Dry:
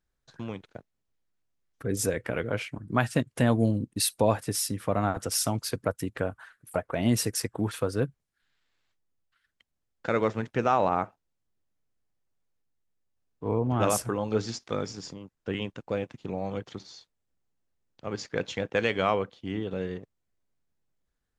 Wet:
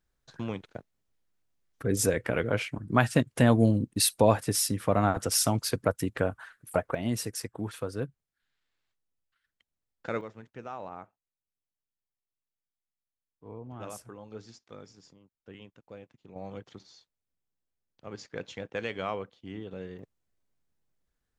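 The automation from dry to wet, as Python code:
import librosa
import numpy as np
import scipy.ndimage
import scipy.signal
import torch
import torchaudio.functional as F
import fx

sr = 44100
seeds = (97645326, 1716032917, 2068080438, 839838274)

y = fx.gain(x, sr, db=fx.steps((0.0, 2.0), (6.95, -6.0), (10.21, -16.5), (16.36, -8.0), (19.99, 0.0)))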